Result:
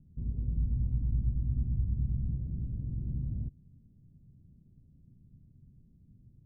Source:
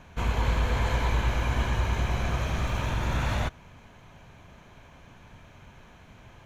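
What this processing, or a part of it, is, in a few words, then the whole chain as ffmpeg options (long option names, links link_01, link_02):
the neighbour's flat through the wall: -filter_complex "[0:a]asettb=1/sr,asplit=3[link_01][link_02][link_03];[link_01]atrim=end=0.564[link_04];[link_02]atrim=start=0.56:end=2.34,asetpts=PTS-STARTPTS,afade=type=in:duration=0.004:curve=qsin,afade=type=out:start_time=1.776:duration=0.004:curve=qsin,aecho=1:1:1.1:0.5,atrim=end_sample=78498[link_05];[link_03]atrim=start=2.336[link_06];[link_04][link_05]acrossfade=duration=0.004:curve1=hsin:curve2=qsin[link_07];[link_07][link_06]acrossfade=duration=0.004:curve1=qsin:curve2=hsin,lowpass=frequency=270:width=0.5412,lowpass=frequency=270:width=1.3066,equalizer=frequency=140:width_type=o:width=0.7:gain=5,volume=-7.5dB"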